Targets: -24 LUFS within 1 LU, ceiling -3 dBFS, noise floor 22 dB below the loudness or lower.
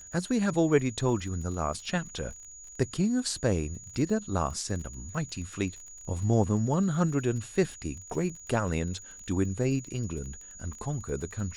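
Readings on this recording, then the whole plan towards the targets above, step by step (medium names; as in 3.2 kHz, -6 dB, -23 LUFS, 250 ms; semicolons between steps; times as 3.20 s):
tick rate 25 per s; steady tone 6.8 kHz; tone level -45 dBFS; loudness -30.0 LUFS; peak level -10.5 dBFS; loudness target -24.0 LUFS
-> de-click; band-stop 6.8 kHz, Q 30; trim +6 dB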